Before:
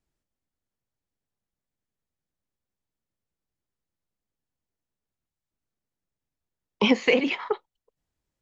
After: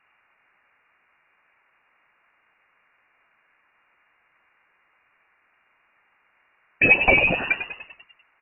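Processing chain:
parametric band 720 Hz −13.5 dB 0.52 octaves
noise in a band 300–1,900 Hz −71 dBFS
on a send: echo with shifted repeats 98 ms, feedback 57%, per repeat −73 Hz, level −9.5 dB
on the sum: voice inversion scrambler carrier 2,800 Hz
level +5 dB

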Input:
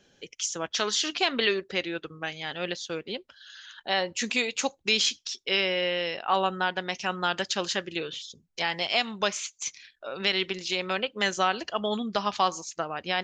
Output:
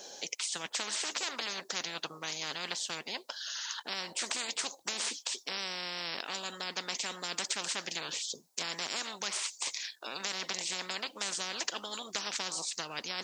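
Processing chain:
high-pass filter 740 Hz 12 dB per octave
flat-topped bell 2,000 Hz −13.5 dB
every bin compressed towards the loudest bin 10 to 1

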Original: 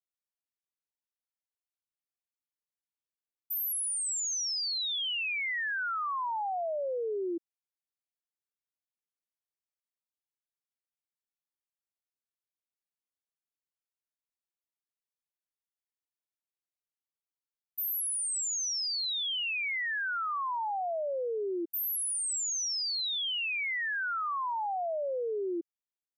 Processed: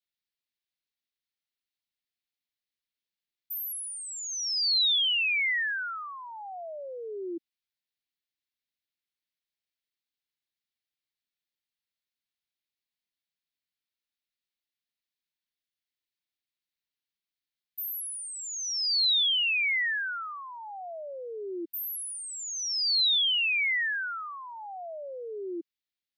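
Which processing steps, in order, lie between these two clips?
octave-band graphic EQ 250/500/1,000/2,000/4,000/8,000 Hz +3/−5/−10/+6/+10/−8 dB

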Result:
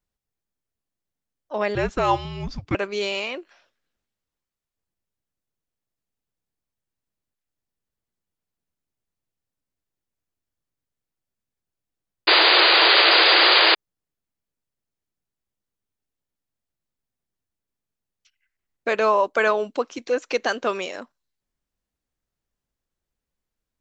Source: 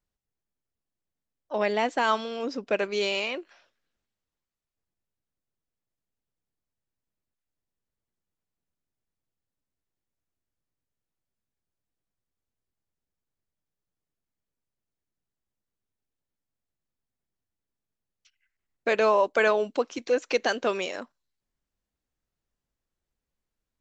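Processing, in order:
dynamic equaliser 1,200 Hz, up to +5 dB, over −38 dBFS, Q 2.1
0:01.75–0:02.75: frequency shifter −300 Hz
0:12.27–0:13.75: sound drawn into the spectrogram noise 310–4,900 Hz −16 dBFS
level +1 dB

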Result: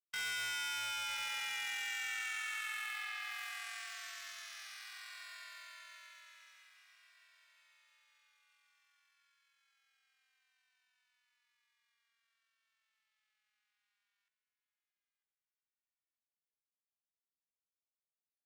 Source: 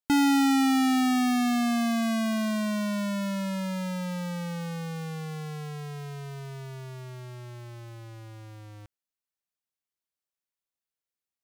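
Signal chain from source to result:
frequency shifter +55 Hz
noise gate −29 dBFS, range −23 dB
spectral tilt −3.5 dB per octave
in parallel at −5 dB: hard clipping −26.5 dBFS, distortion −6 dB
on the sum: tempo change 0.62×
inverse Chebyshev high-pass filter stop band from 300 Hz, stop band 80 dB
wave folding −33 dBFS
on a send: repeating echo 944 ms, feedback 41%, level −13 dB
on the sum: barber-pole flanger 2.1 ms −0.58 Hz
level +3.5 dB

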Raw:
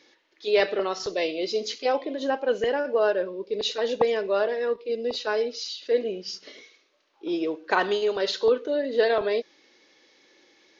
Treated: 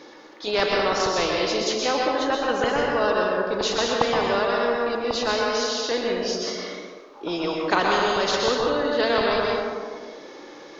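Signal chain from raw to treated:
high shelf with overshoot 1,600 Hz −8 dB, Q 1.5
dense smooth reverb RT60 1.1 s, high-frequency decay 0.6×, pre-delay 110 ms, DRR −0.5 dB
every bin compressed towards the loudest bin 2 to 1
level +3.5 dB

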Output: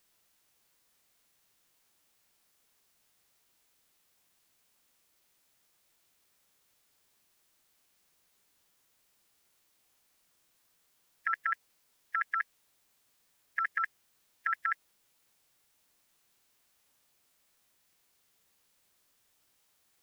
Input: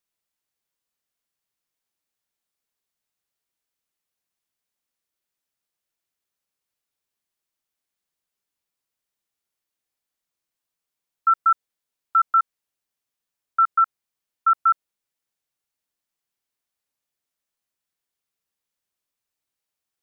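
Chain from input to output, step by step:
compressor whose output falls as the input rises −29 dBFS, ratio −1
formants moved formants +5 semitones

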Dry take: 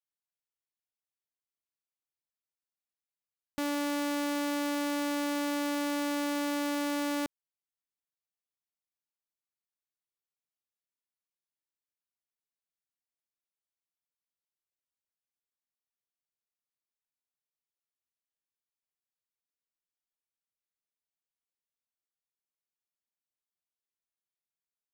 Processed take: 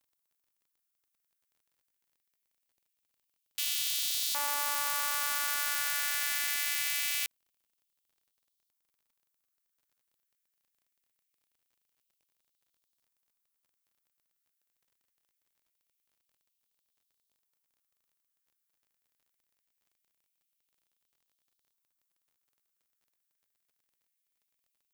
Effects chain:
auto-filter high-pass saw up 0.23 Hz 910–3,800 Hz
RIAA equalisation recording
surface crackle 37 per second −57 dBFS
level −3 dB

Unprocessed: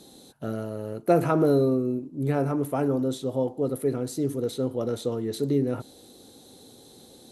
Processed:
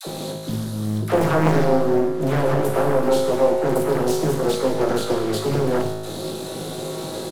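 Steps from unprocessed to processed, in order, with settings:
compressor on every frequency bin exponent 0.6
reverb reduction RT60 0.51 s
healed spectral selection 0:00.44–0:00.96, 320–3,700 Hz before
noise gate with hold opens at −29 dBFS
comb filter 5.2 ms, depth 45%
leveller curve on the samples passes 3
in parallel at −2 dB: speech leveller within 4 dB 0.5 s
on the sum: tuned comb filter 53 Hz, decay 1.5 s, harmonics all, mix 90%
all-pass dispersion lows, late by 66 ms, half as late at 540 Hz
on a send at −8 dB: convolution reverb RT60 0.25 s, pre-delay 6 ms
on the sum: highs frequency-modulated by the lows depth 0.87 ms
level +2.5 dB

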